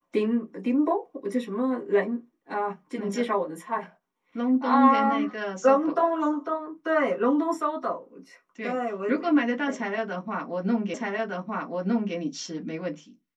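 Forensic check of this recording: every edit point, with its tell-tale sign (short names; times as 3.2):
10.94 repeat of the last 1.21 s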